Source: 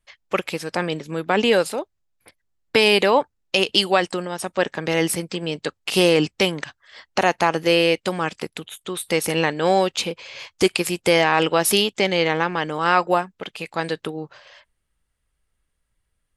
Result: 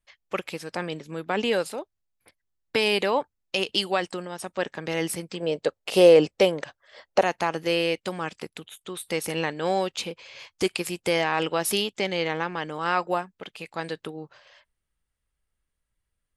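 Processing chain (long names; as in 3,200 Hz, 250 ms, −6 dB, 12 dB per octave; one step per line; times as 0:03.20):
0:05.40–0:07.22: parametric band 550 Hz +13 dB 1 octave
level −7 dB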